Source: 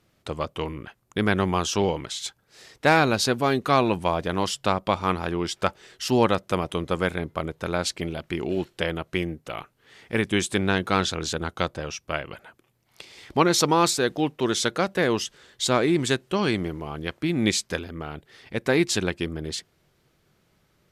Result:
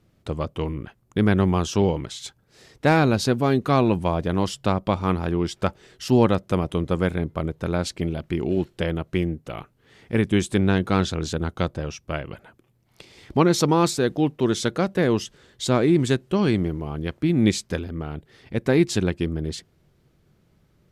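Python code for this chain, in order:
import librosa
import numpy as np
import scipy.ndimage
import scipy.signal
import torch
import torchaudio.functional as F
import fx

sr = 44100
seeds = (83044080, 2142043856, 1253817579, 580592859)

y = fx.low_shelf(x, sr, hz=440.0, db=11.5)
y = y * 10.0 ** (-4.0 / 20.0)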